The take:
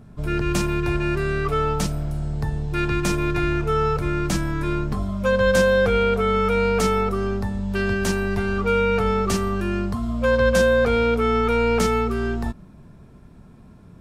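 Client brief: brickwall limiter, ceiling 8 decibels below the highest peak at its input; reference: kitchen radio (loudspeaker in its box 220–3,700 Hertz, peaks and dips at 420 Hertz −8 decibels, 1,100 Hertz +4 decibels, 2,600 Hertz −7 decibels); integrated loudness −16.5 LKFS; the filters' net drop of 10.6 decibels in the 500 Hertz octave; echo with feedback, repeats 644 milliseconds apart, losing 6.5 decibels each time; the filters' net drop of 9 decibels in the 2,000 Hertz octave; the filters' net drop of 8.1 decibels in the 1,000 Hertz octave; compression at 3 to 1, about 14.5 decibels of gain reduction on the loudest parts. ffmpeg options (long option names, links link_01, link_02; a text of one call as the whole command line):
ffmpeg -i in.wav -af "equalizer=frequency=500:width_type=o:gain=-5.5,equalizer=frequency=1000:width_type=o:gain=-9,equalizer=frequency=2000:width_type=o:gain=-7,acompressor=threshold=-40dB:ratio=3,alimiter=level_in=9dB:limit=-24dB:level=0:latency=1,volume=-9dB,highpass=220,equalizer=frequency=420:width_type=q:width=4:gain=-8,equalizer=frequency=1100:width_type=q:width=4:gain=4,equalizer=frequency=2600:width_type=q:width=4:gain=-7,lowpass=frequency=3700:width=0.5412,lowpass=frequency=3700:width=1.3066,aecho=1:1:644|1288|1932|2576|3220|3864:0.473|0.222|0.105|0.0491|0.0231|0.0109,volume=30dB" out.wav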